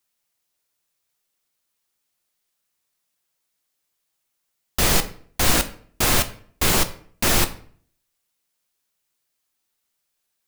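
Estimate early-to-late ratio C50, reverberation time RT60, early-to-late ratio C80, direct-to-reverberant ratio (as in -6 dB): 15.0 dB, 0.55 s, 18.5 dB, 8.0 dB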